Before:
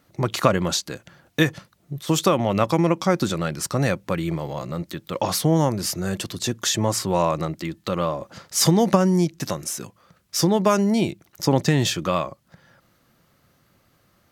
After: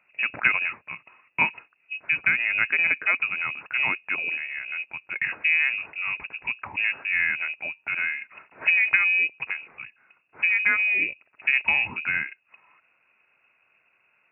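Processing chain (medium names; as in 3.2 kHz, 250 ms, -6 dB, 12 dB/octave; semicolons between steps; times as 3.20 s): frequency inversion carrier 2.7 kHz; high-pass 110 Hz 12 dB/octave; trim -3.5 dB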